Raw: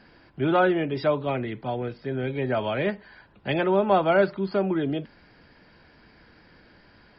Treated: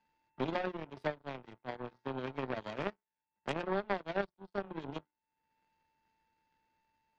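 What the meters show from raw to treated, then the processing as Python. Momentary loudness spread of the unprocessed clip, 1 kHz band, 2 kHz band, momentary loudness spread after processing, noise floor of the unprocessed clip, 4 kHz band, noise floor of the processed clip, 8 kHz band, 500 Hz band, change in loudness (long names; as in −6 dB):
10 LU, −13.0 dB, −12.0 dB, 10 LU, −56 dBFS, −11.5 dB, below −85 dBFS, can't be measured, −15.0 dB, −14.5 dB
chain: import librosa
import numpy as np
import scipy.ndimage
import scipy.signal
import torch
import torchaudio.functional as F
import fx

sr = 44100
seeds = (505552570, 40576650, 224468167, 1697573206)

y = fx.peak_eq(x, sr, hz=1300.0, db=-14.0, octaves=0.47)
y = fx.hum_notches(y, sr, base_hz=60, count=7)
y = y + 10.0 ** (-42.0 / 20.0) * np.sin(2.0 * np.pi * 890.0 * np.arange(len(y)) / sr)
y = fx.power_curve(y, sr, exponent=3.0)
y = fx.band_squash(y, sr, depth_pct=100)
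y = y * 10.0 ** (1.5 / 20.0)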